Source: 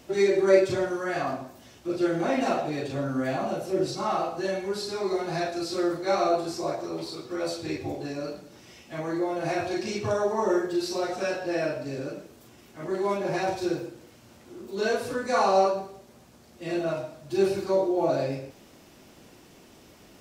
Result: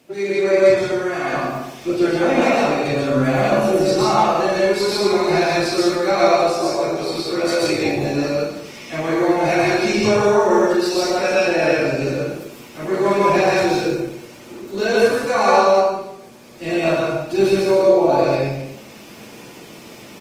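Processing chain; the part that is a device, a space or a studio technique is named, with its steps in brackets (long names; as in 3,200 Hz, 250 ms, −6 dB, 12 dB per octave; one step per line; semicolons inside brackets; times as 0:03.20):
parametric band 2,400 Hz +5.5 dB 0.27 octaves
repeating echo 66 ms, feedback 56%, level −17.5 dB
far-field microphone of a smart speaker (convolution reverb RT60 0.70 s, pre-delay 110 ms, DRR −3 dB; high-pass filter 110 Hz 24 dB per octave; automatic gain control gain up to 10 dB; level −1 dB; Opus 24 kbit/s 48,000 Hz)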